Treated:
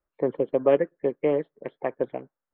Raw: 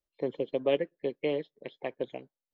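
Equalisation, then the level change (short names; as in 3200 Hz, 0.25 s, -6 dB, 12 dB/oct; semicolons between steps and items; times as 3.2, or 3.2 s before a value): synth low-pass 1400 Hz, resonance Q 2.2; air absorption 170 m; +6.5 dB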